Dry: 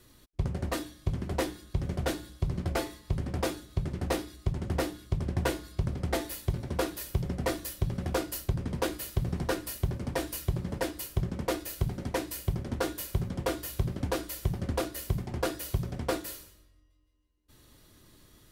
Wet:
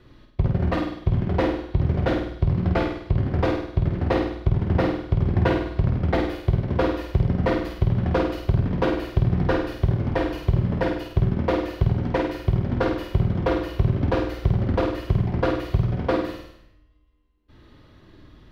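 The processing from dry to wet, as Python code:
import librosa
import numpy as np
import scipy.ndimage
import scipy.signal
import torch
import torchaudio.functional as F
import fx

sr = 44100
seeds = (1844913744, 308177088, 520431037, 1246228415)

y = fx.air_absorb(x, sr, metres=310.0)
y = fx.room_flutter(y, sr, wall_m=8.6, rt60_s=0.7)
y = y * librosa.db_to_amplitude(8.0)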